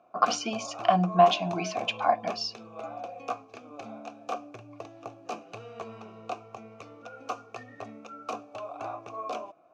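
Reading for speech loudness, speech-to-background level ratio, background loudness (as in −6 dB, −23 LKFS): −26.5 LKFS, 13.5 dB, −40.0 LKFS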